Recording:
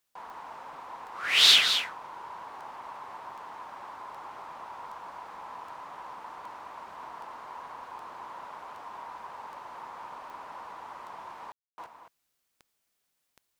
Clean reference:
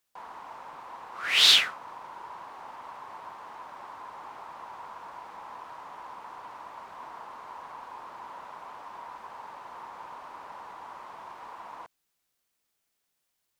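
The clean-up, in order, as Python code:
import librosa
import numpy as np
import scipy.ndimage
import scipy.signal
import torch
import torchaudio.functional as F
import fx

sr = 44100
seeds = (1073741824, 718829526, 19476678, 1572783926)

y = fx.fix_declick_ar(x, sr, threshold=10.0)
y = fx.fix_ambience(y, sr, seeds[0], print_start_s=12.78, print_end_s=13.28, start_s=11.52, end_s=11.78)
y = fx.fix_echo_inverse(y, sr, delay_ms=217, level_db=-8.5)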